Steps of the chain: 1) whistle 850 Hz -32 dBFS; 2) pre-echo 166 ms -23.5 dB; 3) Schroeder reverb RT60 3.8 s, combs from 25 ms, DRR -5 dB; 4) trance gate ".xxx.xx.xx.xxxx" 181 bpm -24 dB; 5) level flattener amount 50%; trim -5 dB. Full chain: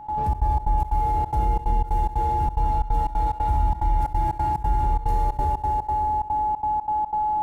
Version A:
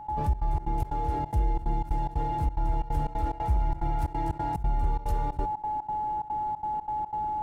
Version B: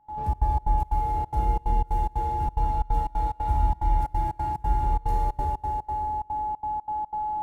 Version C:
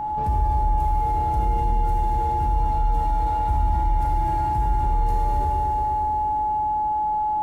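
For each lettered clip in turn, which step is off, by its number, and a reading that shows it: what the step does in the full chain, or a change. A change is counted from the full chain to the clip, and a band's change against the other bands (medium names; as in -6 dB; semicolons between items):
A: 3, momentary loudness spread change +1 LU; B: 5, crest factor change +2.5 dB; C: 4, loudness change +1.0 LU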